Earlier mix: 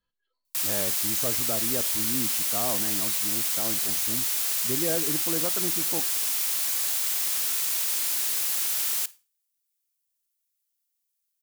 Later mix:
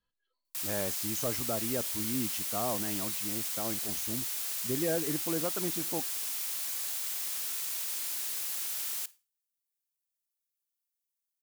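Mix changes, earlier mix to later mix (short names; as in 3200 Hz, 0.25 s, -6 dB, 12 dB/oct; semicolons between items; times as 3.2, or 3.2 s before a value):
speech: send -10.0 dB; background -8.5 dB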